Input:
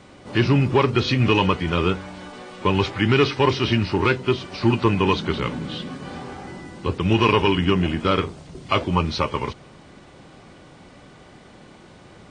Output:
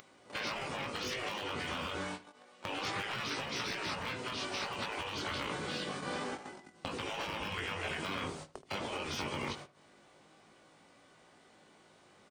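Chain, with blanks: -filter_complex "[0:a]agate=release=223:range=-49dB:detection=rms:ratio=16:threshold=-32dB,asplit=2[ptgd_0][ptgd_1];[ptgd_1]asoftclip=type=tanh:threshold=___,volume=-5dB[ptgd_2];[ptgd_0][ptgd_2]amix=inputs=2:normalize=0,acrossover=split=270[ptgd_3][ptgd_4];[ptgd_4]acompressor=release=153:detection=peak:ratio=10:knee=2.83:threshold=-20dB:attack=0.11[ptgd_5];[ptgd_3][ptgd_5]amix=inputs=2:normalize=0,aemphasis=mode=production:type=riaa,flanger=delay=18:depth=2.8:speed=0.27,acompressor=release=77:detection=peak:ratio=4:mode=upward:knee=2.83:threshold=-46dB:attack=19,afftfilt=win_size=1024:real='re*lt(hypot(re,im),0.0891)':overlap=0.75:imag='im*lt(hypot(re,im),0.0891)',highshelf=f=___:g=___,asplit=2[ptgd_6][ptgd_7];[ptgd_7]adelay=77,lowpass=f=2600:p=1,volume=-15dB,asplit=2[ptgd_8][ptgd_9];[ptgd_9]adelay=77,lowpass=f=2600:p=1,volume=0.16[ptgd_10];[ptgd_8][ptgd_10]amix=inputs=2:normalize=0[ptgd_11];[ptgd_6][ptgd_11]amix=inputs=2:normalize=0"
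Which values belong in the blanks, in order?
-17.5dB, 3000, -11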